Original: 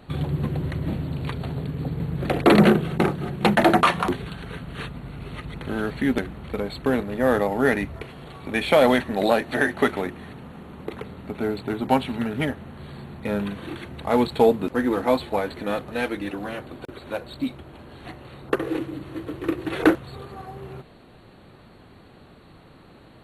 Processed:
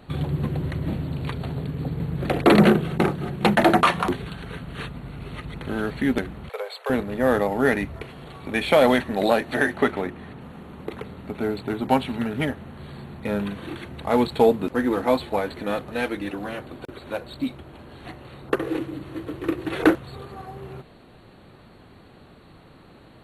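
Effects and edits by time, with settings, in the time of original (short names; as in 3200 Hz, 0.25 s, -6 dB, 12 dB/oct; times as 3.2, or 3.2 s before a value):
6.49–6.9 steep high-pass 440 Hz 72 dB/oct
9.77–10.41 high shelf 4300 Hz -7.5 dB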